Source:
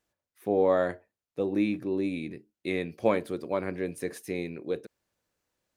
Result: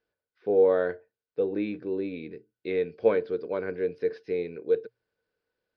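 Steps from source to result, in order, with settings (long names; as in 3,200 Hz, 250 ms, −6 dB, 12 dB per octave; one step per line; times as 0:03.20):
elliptic low-pass filter 5,000 Hz, stop band 40 dB
mains-hum notches 60/120 Hz
hollow resonant body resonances 450/1,500 Hz, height 15 dB, ringing for 50 ms
level −4.5 dB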